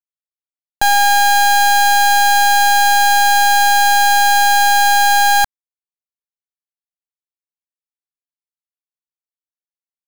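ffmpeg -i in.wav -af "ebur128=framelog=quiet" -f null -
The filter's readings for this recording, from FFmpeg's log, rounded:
Integrated loudness:
  I:         -11.4 LUFS
  Threshold: -21.4 LUFS
Loudness range:
  LRA:         7.4 LU
  Threshold: -32.6 LUFS
  LRA low:   -18.5 LUFS
  LRA high:  -11.0 LUFS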